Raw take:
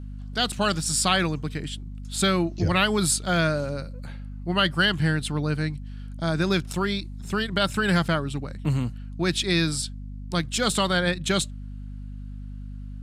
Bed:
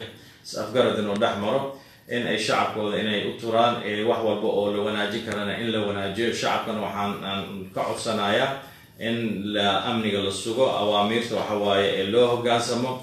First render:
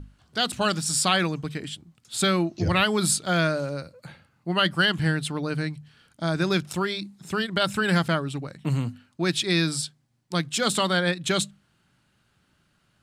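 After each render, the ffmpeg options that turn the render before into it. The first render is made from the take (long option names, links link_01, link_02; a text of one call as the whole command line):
ffmpeg -i in.wav -af "bandreject=frequency=50:width_type=h:width=6,bandreject=frequency=100:width_type=h:width=6,bandreject=frequency=150:width_type=h:width=6,bandreject=frequency=200:width_type=h:width=6,bandreject=frequency=250:width_type=h:width=6" out.wav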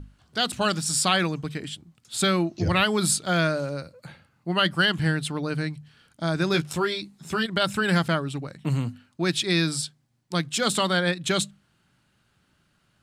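ffmpeg -i in.wav -filter_complex "[0:a]asettb=1/sr,asplit=3[link_01][link_02][link_03];[link_01]atrim=end=6.534[link_04];[link_02]atrim=start=6.53:end=7.46,asetpts=PTS-STARTPTS,afade=type=in:duration=0.004:curve=qsin,afade=type=out:start_time=0.926:duration=0.004:curve=qsin,asplit=2[link_05][link_06];[link_06]adelay=13,volume=-4.5dB[link_07];[link_05][link_07]amix=inputs=2:normalize=0,atrim=end_sample=41013[link_08];[link_03]atrim=start=7.456[link_09];[link_04][link_08]acrossfade=duration=0.004:curve1=hsin:curve2=qsin[link_10];[link_10][link_09]acrossfade=duration=0.004:curve1=qsin:curve2=hsin" out.wav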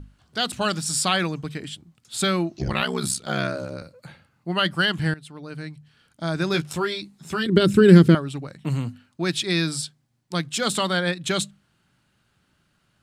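ffmpeg -i in.wav -filter_complex "[0:a]asettb=1/sr,asplit=3[link_01][link_02][link_03];[link_01]atrim=end=2.584[link_04];[link_02]atrim=start=2.58:end=3.82,asetpts=PTS-STARTPTS,afade=type=in:duration=0.004:curve=qsin,afade=type=out:start_time=1.236:duration=0.004:curve=qsin,aeval=exprs='val(0)*sin(2*PI*33*n/s)':channel_layout=same[link_05];[link_03]atrim=start=3.816[link_06];[link_04][link_05]acrossfade=duration=0.004:curve1=hsin:curve2=qsin[link_07];[link_07][link_06]acrossfade=duration=0.004:curve1=qsin:curve2=hsin,asettb=1/sr,asplit=3[link_08][link_09][link_10];[link_08]atrim=end=7.464[link_11];[link_09]atrim=start=7.46:end=8.15,asetpts=PTS-STARTPTS,afade=type=in:duration=0.004:curve=qsin,afade=type=out:start_time=0.686:duration=0.004:curve=qsin,lowshelf=frequency=530:width_type=q:width=3:gain=10.5[link_12];[link_10]atrim=start=8.146[link_13];[link_11][link_12]acrossfade=duration=0.004:curve1=hsin:curve2=qsin[link_14];[link_14][link_13]acrossfade=duration=0.004:curve1=qsin:curve2=hsin,asplit=2[link_15][link_16];[link_15]atrim=end=5.14,asetpts=PTS-STARTPTS,afade=type=out:start_time=5.136:duration=0.004:curve=hsin:silence=0.133352[link_17];[link_16]atrim=start=5.14,asetpts=PTS-STARTPTS,afade=type=in:duration=1.23:silence=0.133352[link_18];[link_17][link_18]concat=n=2:v=0:a=1" out.wav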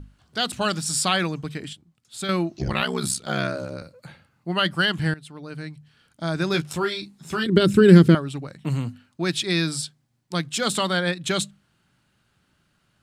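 ffmpeg -i in.wav -filter_complex "[0:a]asettb=1/sr,asplit=3[link_01][link_02][link_03];[link_01]atrim=end=6.794[link_04];[link_02]atrim=start=6.79:end=7.44,asetpts=PTS-STARTPTS,afade=type=in:duration=0.004:curve=qsin,afade=type=out:start_time=0.646:duration=0.004:curve=qsin,asplit=2[link_05][link_06];[link_06]adelay=36,volume=-12dB[link_07];[link_05][link_07]amix=inputs=2:normalize=0,atrim=end_sample=28665[link_08];[link_03]atrim=start=7.436[link_09];[link_04][link_08]acrossfade=duration=0.004:curve1=hsin:curve2=qsin[link_10];[link_10][link_09]acrossfade=duration=0.004:curve1=qsin:curve2=hsin,asplit=3[link_11][link_12][link_13];[link_11]atrim=end=1.732[link_14];[link_12]atrim=start=1.728:end=2.292,asetpts=PTS-STARTPTS,volume=-7.5dB[link_15];[link_13]atrim=start=2.288[link_16];[link_14][link_15]acrossfade=duration=0.004:curve1=hsin:curve2=hsin[link_17];[link_17][link_16]acrossfade=duration=0.004:curve1=hsin:curve2=hsin" out.wav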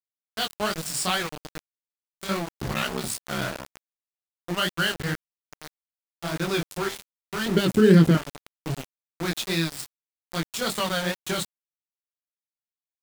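ffmpeg -i in.wav -af "flanger=delay=18.5:depth=5.8:speed=2.5,aeval=exprs='val(0)*gte(abs(val(0)),0.0422)':channel_layout=same" out.wav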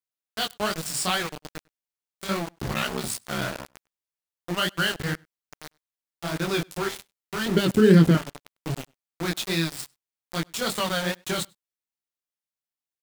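ffmpeg -i in.wav -filter_complex "[0:a]asplit=2[link_01][link_02];[link_02]adelay=99.13,volume=-29dB,highshelf=frequency=4000:gain=-2.23[link_03];[link_01][link_03]amix=inputs=2:normalize=0" out.wav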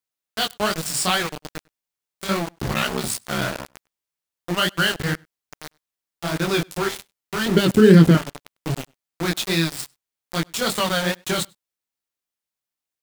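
ffmpeg -i in.wav -af "volume=4.5dB,alimiter=limit=-1dB:level=0:latency=1" out.wav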